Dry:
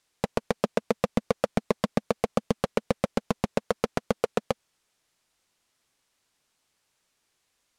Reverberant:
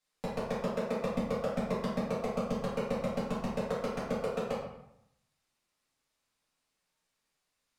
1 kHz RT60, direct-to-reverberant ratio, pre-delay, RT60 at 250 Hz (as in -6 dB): 0.80 s, -10.0 dB, 4 ms, 0.85 s